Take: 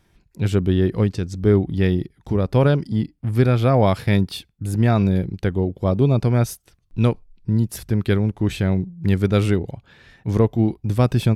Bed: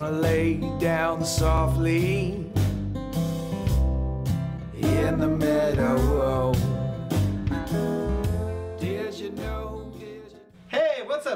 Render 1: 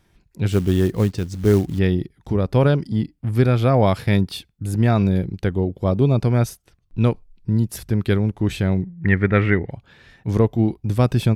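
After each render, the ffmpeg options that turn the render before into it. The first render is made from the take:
-filter_complex "[0:a]asettb=1/sr,asplit=3[a][b][c];[a]atrim=end=0.504[d];[b]atrim=start=0.5:end=1.79,asetpts=PTS-STARTPTS,afade=t=in:d=0.004:c=qsin,afade=t=out:st=1.286:d=0.004:c=qsin,acrusher=bits=6:mode=log:mix=0:aa=0.000001[e];[c]atrim=start=1.786[f];[d][e]acrossfade=d=0.004:c1=hsin:c2=qsin[g];[g][f]acrossfade=d=0.004:c1=qsin:c2=hsin,asettb=1/sr,asplit=3[h][i][j];[h]atrim=end=6.494[k];[i]atrim=start=6.49:end=7.07,asetpts=PTS-STARTPTS,afade=t=in:d=0.004:c=qsin,afade=t=out:st=0.576:d=0.004:c=qsin,highshelf=f=4.4k:g=-7[l];[j]atrim=start=7.066[m];[k][l]acrossfade=d=0.004:c1=hsin:c2=qsin[n];[n][m]acrossfade=d=0.004:c1=qsin:c2=hsin,asettb=1/sr,asplit=3[o][p][q];[o]atrim=end=8.824[r];[p]atrim=start=8.82:end=9.71,asetpts=PTS-STARTPTS,afade=t=in:d=0.004:c=qsin,afade=t=out:st=0.886:d=0.004:c=qsin,lowpass=f=1.9k:t=q:w=7.6[s];[q]atrim=start=9.706[t];[r][s]acrossfade=d=0.004:c1=hsin:c2=qsin[u];[u][t]acrossfade=d=0.004:c1=qsin:c2=hsin"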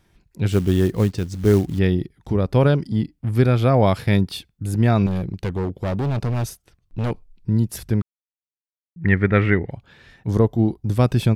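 -filter_complex "[0:a]asettb=1/sr,asplit=3[a][b][c];[a]atrim=end=5.064[d];[b]atrim=start=5.06:end=7.11,asetpts=PTS-STARTPTS,afade=t=in:d=0.004:c=qsin,afade=t=out:st=2.046:d=0.004:c=qsin,asoftclip=type=hard:threshold=-19.5dB[e];[c]atrim=start=7.106[f];[d][e]acrossfade=d=0.004:c1=hsin:c2=qsin[g];[g][f]acrossfade=d=0.004:c1=qsin:c2=hsin,asettb=1/sr,asplit=3[h][i][j];[h]atrim=end=10.274[k];[i]atrim=start=10.27:end=10.92,asetpts=PTS-STARTPTS,afade=t=in:d=0.004:c=qsin,afade=t=out:st=0.646:d=0.004:c=qsin,equalizer=f=2.4k:t=o:w=0.49:g=-10.5[l];[j]atrim=start=10.916[m];[k][l]acrossfade=d=0.004:c1=hsin:c2=qsin[n];[n][m]acrossfade=d=0.004:c1=qsin:c2=hsin,asplit=3[o][p][q];[o]atrim=end=8.02,asetpts=PTS-STARTPTS,afade=t=out:st=8.016:d=0.004:c=hsin[r];[p]atrim=start=8.02:end=8.96,asetpts=PTS-STARTPTS,volume=0[s];[q]atrim=start=8.96,asetpts=PTS-STARTPTS,afade=t=in:d=0.004:c=hsin[t];[r][s][t]concat=n=3:v=0:a=1"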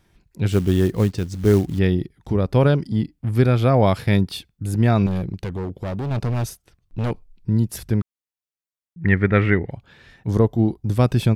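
-filter_complex "[0:a]asettb=1/sr,asplit=3[a][b][c];[a]atrim=end=5.354[d];[b]atrim=start=5.35:end=6.11,asetpts=PTS-STARTPTS,afade=t=in:d=0.004:c=qsin,afade=t=out:st=0.756:d=0.004:c=qsin,acompressor=threshold=-24dB:ratio=6:attack=3.2:release=140:knee=1:detection=peak[e];[c]atrim=start=6.106[f];[d][e]acrossfade=d=0.004:c1=hsin:c2=qsin[g];[g][f]acrossfade=d=0.004:c1=qsin:c2=hsin"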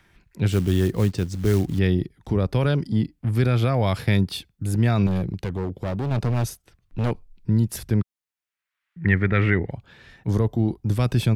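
-filter_complex "[0:a]acrossover=split=110|1500|2200[a][b][c][d];[b]alimiter=limit=-14.5dB:level=0:latency=1:release=38[e];[c]acompressor=mode=upward:threshold=-54dB:ratio=2.5[f];[a][e][f][d]amix=inputs=4:normalize=0"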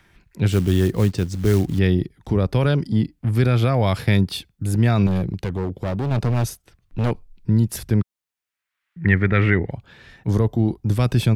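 -af "volume=2.5dB"

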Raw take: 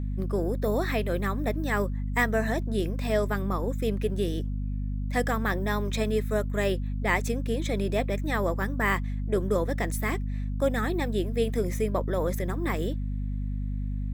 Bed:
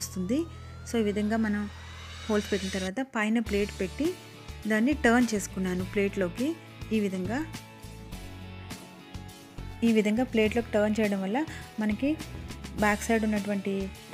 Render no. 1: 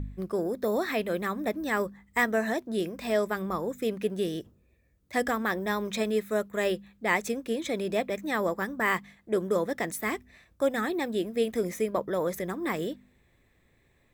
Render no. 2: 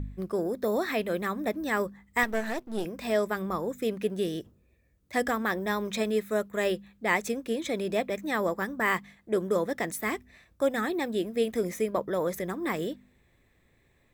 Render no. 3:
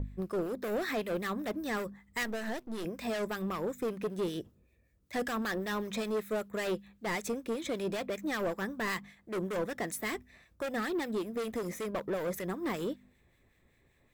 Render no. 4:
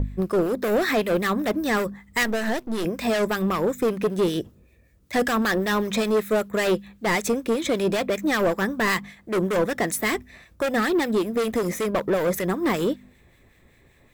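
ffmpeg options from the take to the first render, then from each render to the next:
-af "bandreject=f=50:t=h:w=4,bandreject=f=100:t=h:w=4,bandreject=f=150:t=h:w=4,bandreject=f=200:t=h:w=4,bandreject=f=250:t=h:w=4"
-filter_complex "[0:a]asettb=1/sr,asplit=3[a][b][c];[a]atrim=end=2.234[d];[b]atrim=start=2.23:end=2.85,asetpts=PTS-STARTPTS,afade=t=in:d=0.004:c=qsin,afade=t=out:st=0.616:d=0.004:c=qsin,aeval=exprs='if(lt(val(0),0),0.251*val(0),val(0))':c=same[e];[c]atrim=start=2.846[f];[d][e]acrossfade=d=0.004:c1=hsin:c2=qsin[g];[g][f]acrossfade=d=0.004:c1=qsin:c2=hsin"
-filter_complex "[0:a]volume=28dB,asoftclip=hard,volume=-28dB,acrossover=split=1400[a][b];[a]aeval=exprs='val(0)*(1-0.5/2+0.5/2*cos(2*PI*5.2*n/s))':c=same[c];[b]aeval=exprs='val(0)*(1-0.5/2-0.5/2*cos(2*PI*5.2*n/s))':c=same[d];[c][d]amix=inputs=2:normalize=0"
-af "volume=11.5dB"

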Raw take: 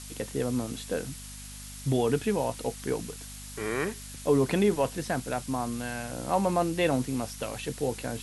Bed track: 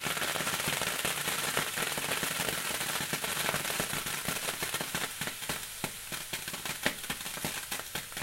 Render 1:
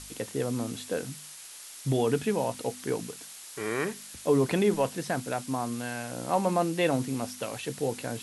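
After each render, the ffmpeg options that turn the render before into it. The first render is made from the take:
-af "bandreject=f=50:t=h:w=4,bandreject=f=100:t=h:w=4,bandreject=f=150:t=h:w=4,bandreject=f=200:t=h:w=4,bandreject=f=250:t=h:w=4"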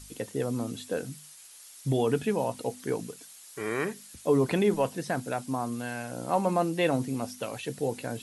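-af "afftdn=nr=8:nf=-46"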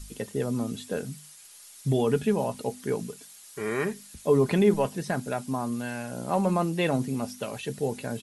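-af "lowshelf=f=110:g=10,aecho=1:1:4.9:0.36"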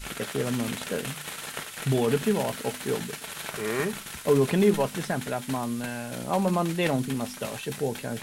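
-filter_complex "[1:a]volume=-5dB[a];[0:a][a]amix=inputs=2:normalize=0"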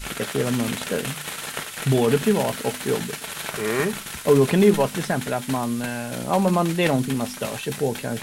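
-af "volume=5dB"

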